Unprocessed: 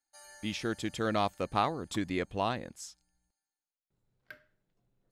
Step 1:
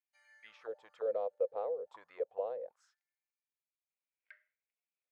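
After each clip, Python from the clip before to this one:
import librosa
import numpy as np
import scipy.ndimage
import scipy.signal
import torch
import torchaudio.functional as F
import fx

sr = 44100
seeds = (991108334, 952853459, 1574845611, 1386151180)

y = fx.low_shelf_res(x, sr, hz=370.0, db=-8.5, q=3.0)
y = fx.auto_wah(y, sr, base_hz=500.0, top_hz=2400.0, q=7.3, full_db=-29.0, direction='down')
y = F.gain(torch.from_numpy(y), 1.0).numpy()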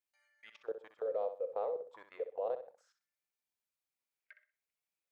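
y = fx.level_steps(x, sr, step_db=20)
y = fx.echo_feedback(y, sr, ms=63, feedback_pct=27, wet_db=-10)
y = F.gain(torch.from_numpy(y), 5.0).numpy()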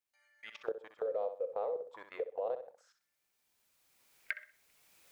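y = fx.recorder_agc(x, sr, target_db=-28.5, rise_db_per_s=15.0, max_gain_db=30)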